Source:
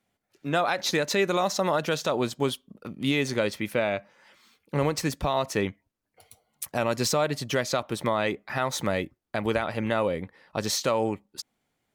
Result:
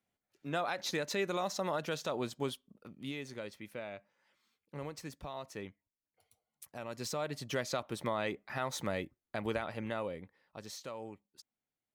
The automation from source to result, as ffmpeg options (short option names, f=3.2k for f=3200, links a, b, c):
-af "volume=-1.5dB,afade=t=out:st=2.46:d=0.76:silence=0.421697,afade=t=in:st=6.84:d=0.73:silence=0.375837,afade=t=out:st=9.48:d=1.15:silence=0.316228"